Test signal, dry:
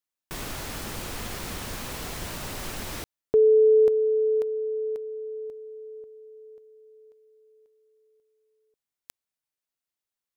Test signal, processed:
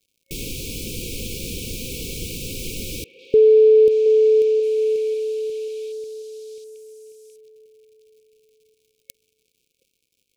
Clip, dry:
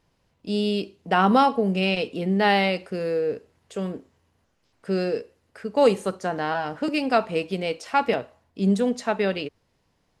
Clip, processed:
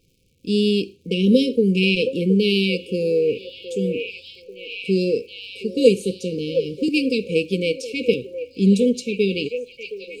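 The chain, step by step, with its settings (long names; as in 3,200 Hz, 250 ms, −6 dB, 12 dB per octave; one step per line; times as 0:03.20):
surface crackle 170 per second −55 dBFS
echo through a band-pass that steps 720 ms, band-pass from 720 Hz, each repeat 0.7 octaves, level −3 dB
brick-wall band-stop 540–2,200 Hz
level +5.5 dB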